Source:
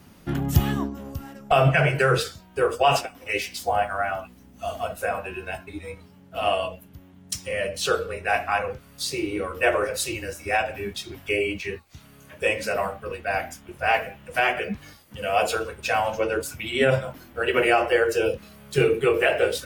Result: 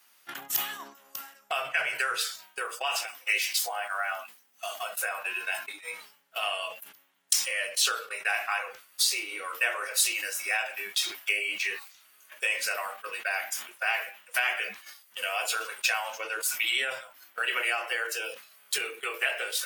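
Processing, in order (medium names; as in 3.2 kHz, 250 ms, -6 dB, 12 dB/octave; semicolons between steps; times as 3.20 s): compression 3:1, threshold -31 dBFS, peak gain reduction 14.5 dB; high-pass 1.3 kHz 12 dB/octave; treble shelf 9.1 kHz +6.5 dB; gate -46 dBFS, range -12 dB; decay stretcher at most 110 dB/s; trim +7 dB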